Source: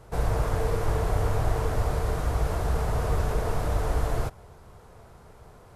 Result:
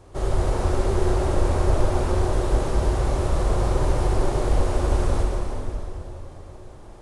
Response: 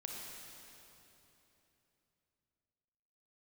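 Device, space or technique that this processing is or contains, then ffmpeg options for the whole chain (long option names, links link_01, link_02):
slowed and reverbed: -filter_complex "[0:a]asetrate=36162,aresample=44100[link_01];[1:a]atrim=start_sample=2205[link_02];[link_01][link_02]afir=irnorm=-1:irlink=0,volume=6dB"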